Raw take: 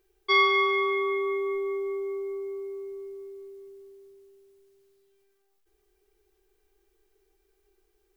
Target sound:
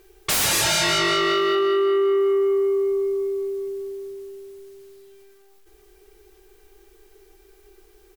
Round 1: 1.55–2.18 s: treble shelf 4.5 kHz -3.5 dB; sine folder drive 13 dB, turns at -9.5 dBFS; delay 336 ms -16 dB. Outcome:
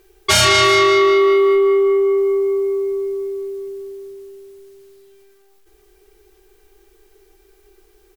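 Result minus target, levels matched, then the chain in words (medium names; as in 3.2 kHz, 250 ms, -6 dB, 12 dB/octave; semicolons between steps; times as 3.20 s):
sine folder: distortion -10 dB
1.55–2.18 s: treble shelf 4.5 kHz -3.5 dB; sine folder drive 13 dB, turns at -17.5 dBFS; delay 336 ms -16 dB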